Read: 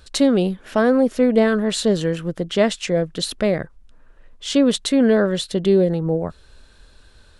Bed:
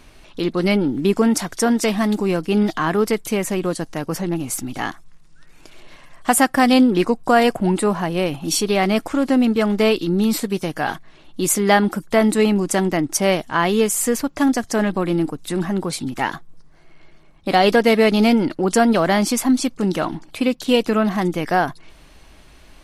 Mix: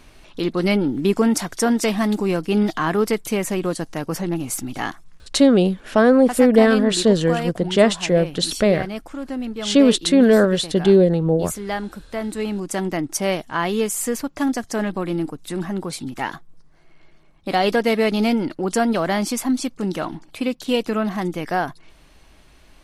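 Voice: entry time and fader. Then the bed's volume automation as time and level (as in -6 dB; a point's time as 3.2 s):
5.20 s, +2.5 dB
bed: 5.16 s -1 dB
5.4 s -11.5 dB
12.2 s -11.5 dB
12.92 s -4 dB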